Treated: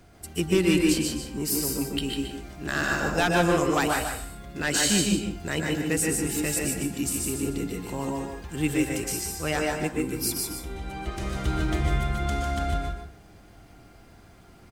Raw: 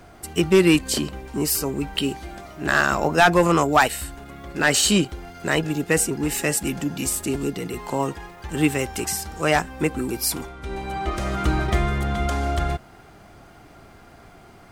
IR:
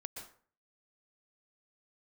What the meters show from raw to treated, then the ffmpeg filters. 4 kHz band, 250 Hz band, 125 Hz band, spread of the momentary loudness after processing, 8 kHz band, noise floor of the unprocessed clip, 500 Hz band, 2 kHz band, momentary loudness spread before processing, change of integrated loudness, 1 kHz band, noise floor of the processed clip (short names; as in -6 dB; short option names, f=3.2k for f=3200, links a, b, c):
-4.0 dB, -3.0 dB, -3.5 dB, 12 LU, -2.5 dB, -48 dBFS, -5.5 dB, -5.5 dB, 14 LU, -4.5 dB, -7.5 dB, -52 dBFS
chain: -filter_complex "[0:a]equalizer=f=930:w=0.55:g=-7,aecho=1:1:150:0.531[a];[1:a]atrim=start_sample=2205[b];[a][b]afir=irnorm=-1:irlink=0"